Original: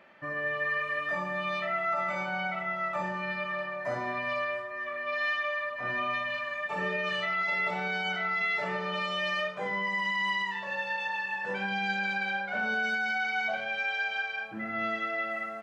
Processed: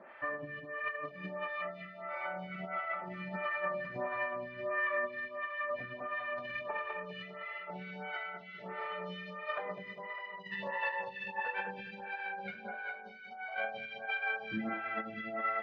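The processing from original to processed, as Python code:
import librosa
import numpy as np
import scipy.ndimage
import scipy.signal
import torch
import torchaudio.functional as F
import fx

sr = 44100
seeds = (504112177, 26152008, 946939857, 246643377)

y = scipy.signal.sosfilt(scipy.signal.butter(4, 5700.0, 'lowpass', fs=sr, output='sos'), x)
y = fx.bass_treble(y, sr, bass_db=0, treble_db=-15)
y = fx.over_compress(y, sr, threshold_db=-37.0, ratio=-0.5)
y = fx.echo_feedback(y, sr, ms=202, feedback_pct=58, wet_db=-5)
y = fx.stagger_phaser(y, sr, hz=1.5)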